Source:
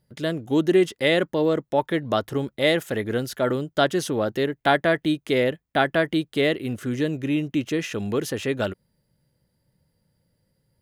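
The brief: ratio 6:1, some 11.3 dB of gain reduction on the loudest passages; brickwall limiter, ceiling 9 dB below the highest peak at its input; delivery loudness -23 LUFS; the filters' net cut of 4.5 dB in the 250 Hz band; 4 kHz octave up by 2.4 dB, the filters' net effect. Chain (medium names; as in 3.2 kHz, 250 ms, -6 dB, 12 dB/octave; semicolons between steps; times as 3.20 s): peaking EQ 250 Hz -6.5 dB; peaking EQ 4 kHz +3 dB; compression 6:1, threshold -28 dBFS; trim +10.5 dB; peak limiter -11.5 dBFS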